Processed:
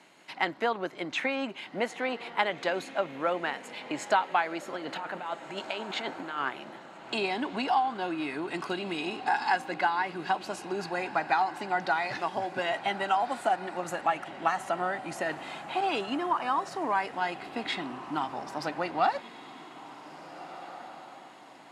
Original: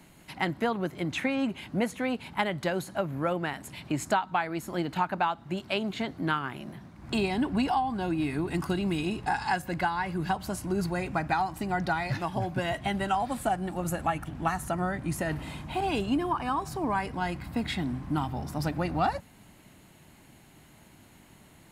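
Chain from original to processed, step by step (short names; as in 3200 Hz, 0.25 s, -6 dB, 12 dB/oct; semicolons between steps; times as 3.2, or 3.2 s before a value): 4.75–6.5 negative-ratio compressor -34 dBFS, ratio -1; BPF 420–6000 Hz; diffused feedback echo 1.688 s, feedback 44%, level -14 dB; gain +2 dB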